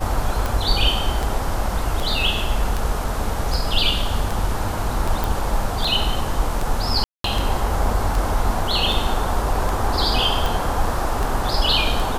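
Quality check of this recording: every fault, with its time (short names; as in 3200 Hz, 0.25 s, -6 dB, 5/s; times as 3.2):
tick 78 rpm
5.24 pop
7.04–7.24 gap 0.203 s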